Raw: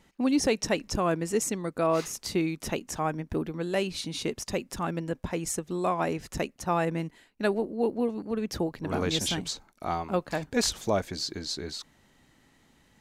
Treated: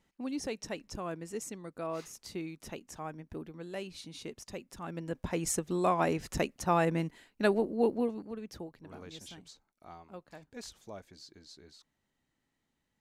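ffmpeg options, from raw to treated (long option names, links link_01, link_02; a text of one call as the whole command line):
ffmpeg -i in.wav -af "volume=-0.5dB,afade=type=in:start_time=4.81:duration=0.68:silence=0.266073,afade=type=out:start_time=7.84:duration=0.52:silence=0.281838,afade=type=out:start_time=8.36:duration=0.62:silence=0.398107" out.wav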